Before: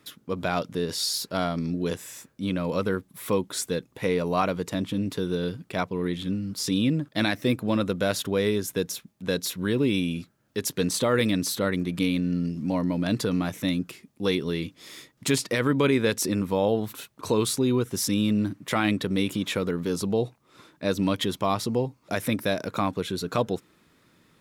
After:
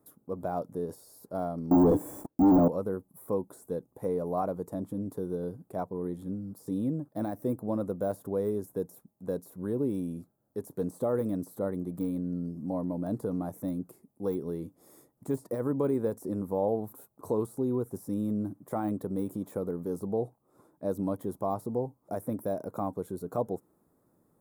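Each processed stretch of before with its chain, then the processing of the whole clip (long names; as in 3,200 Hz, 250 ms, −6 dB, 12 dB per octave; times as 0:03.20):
0:01.71–0:02.68: hollow resonant body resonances 300/2,300/3,400 Hz, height 14 dB, ringing for 70 ms + leveller curve on the samples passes 5
whole clip: notch filter 940 Hz, Q 22; de-essing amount 75%; drawn EQ curve 160 Hz 0 dB, 830 Hz +5 dB, 2,800 Hz −28 dB, 6,100 Hz −12 dB, 8,800 Hz −1 dB, 15,000 Hz +6 dB; level −8 dB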